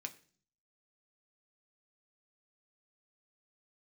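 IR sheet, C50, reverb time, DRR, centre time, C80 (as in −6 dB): 16.5 dB, 0.45 s, 4.5 dB, 6 ms, 20.0 dB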